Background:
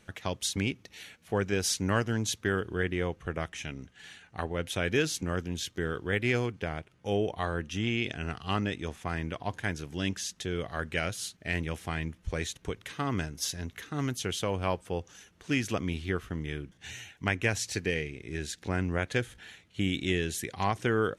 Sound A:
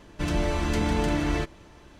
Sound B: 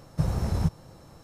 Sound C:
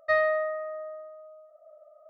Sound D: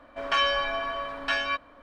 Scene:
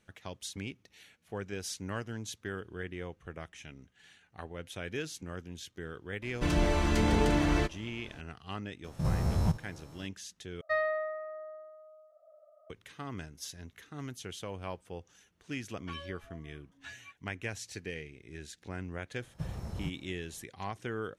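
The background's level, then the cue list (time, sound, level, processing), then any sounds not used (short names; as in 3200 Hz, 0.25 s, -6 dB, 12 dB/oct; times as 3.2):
background -10 dB
6.22 add A -1.5 dB
8.84 add B -1 dB + stepped spectrum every 50 ms
10.61 replace with C -6.5 dB
15.56 add D -17.5 dB + per-bin expansion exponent 3
19.21 add B -12.5 dB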